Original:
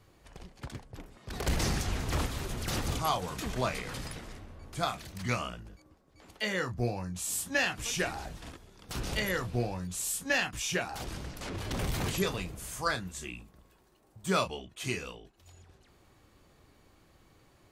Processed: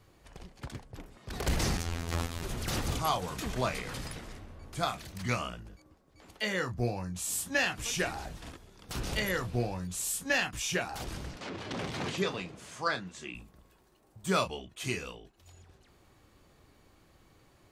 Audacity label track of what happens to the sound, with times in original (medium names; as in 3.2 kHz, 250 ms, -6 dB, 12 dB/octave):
1.770000	2.430000	robot voice 84 Hz
11.360000	13.350000	band-pass 160–5200 Hz